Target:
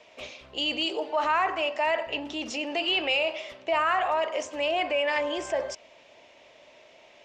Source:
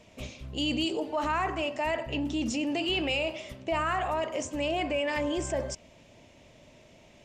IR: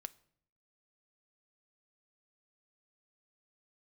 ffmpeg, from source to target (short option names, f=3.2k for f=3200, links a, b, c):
-filter_complex "[0:a]acrossover=split=410 5700:gain=0.0794 1 0.126[a][b][c];[a][b][c]amix=inputs=3:normalize=0,volume=5dB"